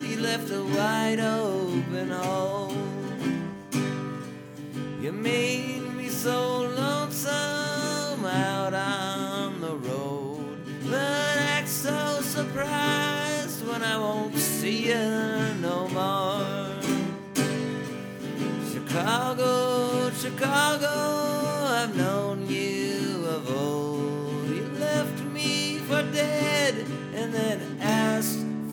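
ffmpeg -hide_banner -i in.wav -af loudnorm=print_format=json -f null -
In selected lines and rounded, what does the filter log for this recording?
"input_i" : "-27.1",
"input_tp" : "-9.1",
"input_lra" : "3.1",
"input_thresh" : "-37.1",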